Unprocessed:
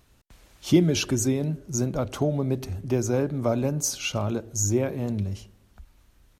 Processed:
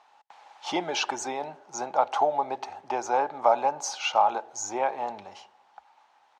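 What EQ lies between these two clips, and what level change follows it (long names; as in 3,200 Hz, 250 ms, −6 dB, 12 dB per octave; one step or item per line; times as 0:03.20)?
high-pass with resonance 830 Hz, resonance Q 10
high-frequency loss of the air 130 metres
+2.5 dB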